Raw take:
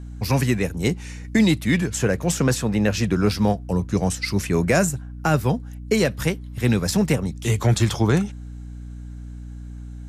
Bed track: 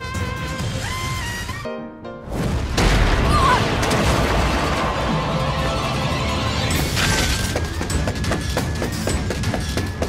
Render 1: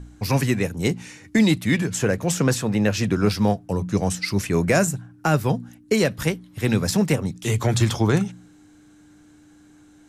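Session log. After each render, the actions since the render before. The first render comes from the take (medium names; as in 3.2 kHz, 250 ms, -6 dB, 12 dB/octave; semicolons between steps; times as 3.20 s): de-hum 60 Hz, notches 4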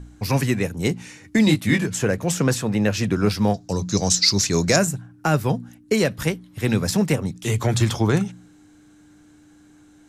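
1.45–1.86 s: doubling 20 ms -3.5 dB; 3.54–4.76 s: high-order bell 5.2 kHz +15 dB 1.2 oct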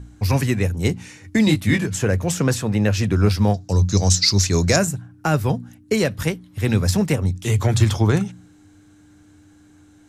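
peaking EQ 91 Hz +13.5 dB 0.33 oct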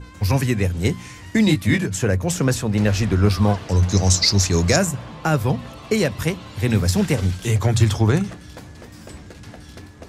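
add bed track -17.5 dB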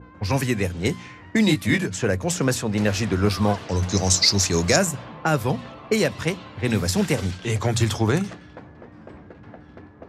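high-pass 190 Hz 6 dB/octave; level-controlled noise filter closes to 1.1 kHz, open at -18 dBFS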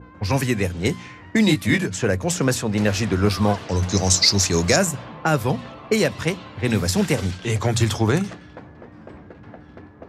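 trim +1.5 dB; peak limiter -3 dBFS, peak gain reduction 2 dB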